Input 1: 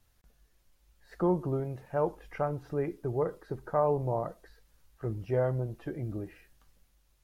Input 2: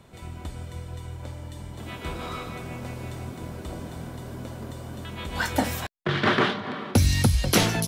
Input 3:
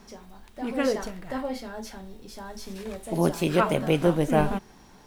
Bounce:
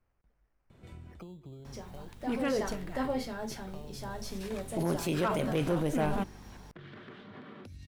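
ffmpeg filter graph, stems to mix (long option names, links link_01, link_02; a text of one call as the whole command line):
ffmpeg -i stem1.wav -i stem2.wav -i stem3.wav -filter_complex "[0:a]acrossover=split=260[link_01][link_02];[link_02]acompressor=threshold=-39dB:ratio=6[link_03];[link_01][link_03]amix=inputs=2:normalize=0,acrusher=samples=12:mix=1:aa=0.000001,volume=-7.5dB,asplit=2[link_04][link_05];[1:a]acompressor=threshold=-33dB:ratio=6,equalizer=frequency=870:width=1:gain=-6.5,alimiter=level_in=6dB:limit=-24dB:level=0:latency=1:release=330,volume=-6dB,adelay=700,volume=-4dB[link_06];[2:a]aeval=exprs='val(0)+0.00355*(sin(2*PI*50*n/s)+sin(2*PI*2*50*n/s)/2+sin(2*PI*3*50*n/s)/3+sin(2*PI*4*50*n/s)/4+sin(2*PI*5*50*n/s)/5)':channel_layout=same,adelay=1650,volume=-1dB[link_07];[link_05]apad=whole_len=377942[link_08];[link_06][link_08]sidechaincompress=threshold=-59dB:ratio=8:attack=5.5:release=390[link_09];[link_04][link_09]amix=inputs=2:normalize=0,highshelf=frequency=3400:gain=-12,acompressor=threshold=-44dB:ratio=6,volume=0dB[link_10];[link_07][link_10]amix=inputs=2:normalize=0,volume=16dB,asoftclip=hard,volume=-16dB,alimiter=limit=-22.5dB:level=0:latency=1:release=12" out.wav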